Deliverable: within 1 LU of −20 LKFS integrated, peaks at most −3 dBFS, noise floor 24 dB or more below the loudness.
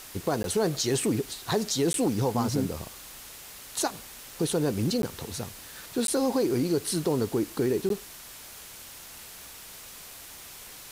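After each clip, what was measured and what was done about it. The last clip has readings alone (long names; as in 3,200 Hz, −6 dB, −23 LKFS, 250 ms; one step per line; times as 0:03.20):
number of dropouts 5; longest dropout 12 ms; background noise floor −45 dBFS; target noise floor −52 dBFS; integrated loudness −28.0 LKFS; sample peak −13.0 dBFS; target loudness −20.0 LKFS
→ repair the gap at 0:00.43/0:01.93/0:05.02/0:06.07/0:07.89, 12 ms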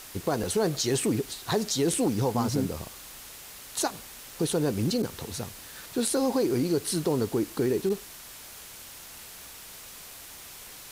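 number of dropouts 0; background noise floor −45 dBFS; target noise floor −52 dBFS
→ noise reduction from a noise print 7 dB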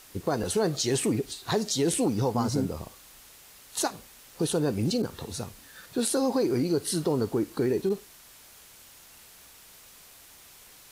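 background noise floor −52 dBFS; integrated loudness −28.0 LKFS; sample peak −13.0 dBFS; target loudness −20.0 LKFS
→ level +8 dB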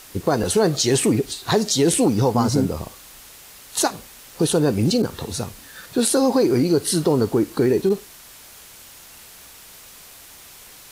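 integrated loudness −20.0 LKFS; sample peak −5.0 dBFS; background noise floor −44 dBFS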